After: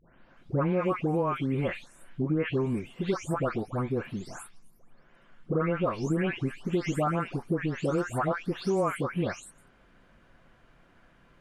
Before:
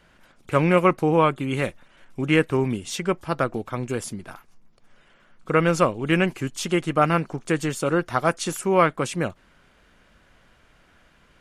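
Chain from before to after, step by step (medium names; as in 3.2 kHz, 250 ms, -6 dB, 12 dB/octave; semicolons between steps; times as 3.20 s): delay that grows with frequency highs late, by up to 371 ms; treble shelf 2.5 kHz -11 dB; compression 5:1, threshold -24 dBFS, peak gain reduction 9.5 dB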